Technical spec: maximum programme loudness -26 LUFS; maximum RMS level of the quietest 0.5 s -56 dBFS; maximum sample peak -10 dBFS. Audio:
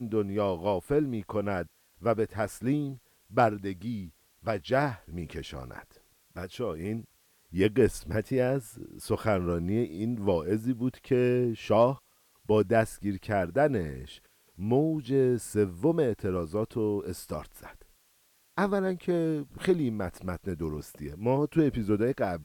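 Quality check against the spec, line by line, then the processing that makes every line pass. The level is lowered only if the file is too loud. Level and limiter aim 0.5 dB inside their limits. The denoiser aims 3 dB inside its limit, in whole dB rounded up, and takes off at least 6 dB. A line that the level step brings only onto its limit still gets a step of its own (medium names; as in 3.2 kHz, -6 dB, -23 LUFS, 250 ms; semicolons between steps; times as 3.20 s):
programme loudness -29.5 LUFS: pass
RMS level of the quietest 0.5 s -66 dBFS: pass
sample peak -11.5 dBFS: pass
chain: none needed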